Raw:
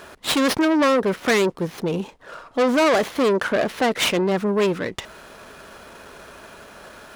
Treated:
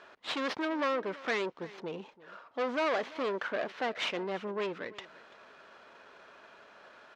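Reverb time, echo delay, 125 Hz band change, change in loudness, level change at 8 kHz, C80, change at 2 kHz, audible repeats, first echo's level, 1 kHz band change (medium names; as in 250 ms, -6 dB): no reverb, 337 ms, -20.5 dB, -13.5 dB, -22.5 dB, no reverb, -11.0 dB, 1, -19.5 dB, -11.5 dB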